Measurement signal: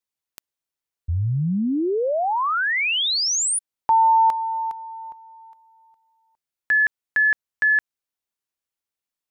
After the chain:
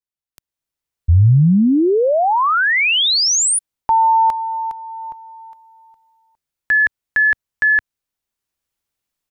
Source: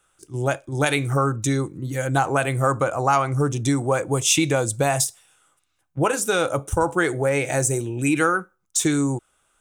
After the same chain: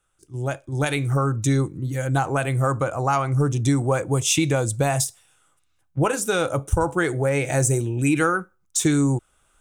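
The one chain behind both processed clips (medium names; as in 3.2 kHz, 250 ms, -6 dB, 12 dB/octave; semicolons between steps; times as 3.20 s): level rider gain up to 16 dB; bass shelf 140 Hz +10 dB; trim -8.5 dB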